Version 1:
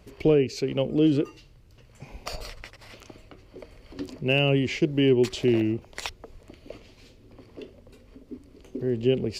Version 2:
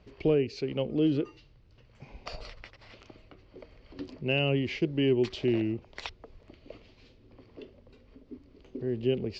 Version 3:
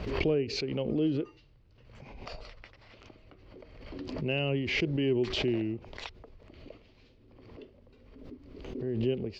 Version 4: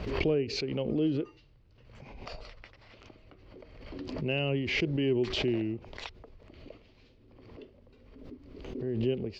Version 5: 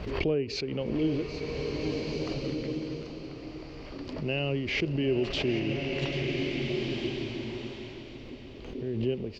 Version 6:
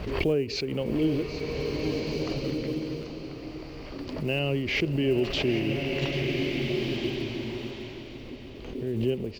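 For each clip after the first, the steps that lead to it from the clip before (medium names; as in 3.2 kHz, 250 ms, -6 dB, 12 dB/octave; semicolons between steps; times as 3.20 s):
low-pass 5.1 kHz 24 dB/octave; trim -5 dB
treble shelf 4.5 kHz -4.5 dB; swell ahead of each attack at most 46 dB/s; trim -3 dB
no audible change
feedback delay 788 ms, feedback 44%, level -13 dB; swelling reverb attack 1690 ms, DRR 1.5 dB
block-companded coder 7-bit; trim +2.5 dB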